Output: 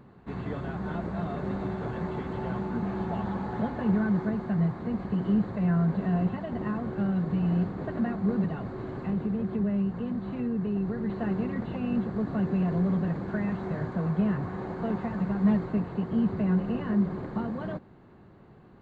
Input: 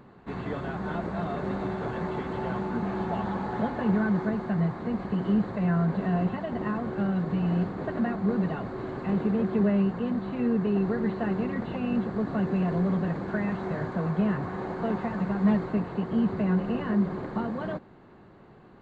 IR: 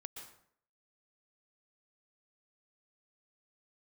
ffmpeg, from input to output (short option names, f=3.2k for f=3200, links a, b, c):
-filter_complex "[0:a]equalizer=f=77:w=0.37:g=6.5,asettb=1/sr,asplit=3[a][b][c];[a]atrim=end=8.444[d];[b]atrim=start=8.44:end=11.1,asetpts=PTS-STARTPTS,afade=t=in:d=0.004:c=qsin,afade=t=out:st=2.656:d=0.004:c=qsin,acrossover=split=170[e][f];[f]acompressor=threshold=-28dB:ratio=2.5[g];[e][g]amix=inputs=2:normalize=0[h];[c]atrim=start=11.096[i];[d][h]acrossfade=d=0.004:c1=hsin:c2=qsin[j];[j][i]acrossfade=d=0.004:c1=qsin:c2=hsin,volume=-4dB"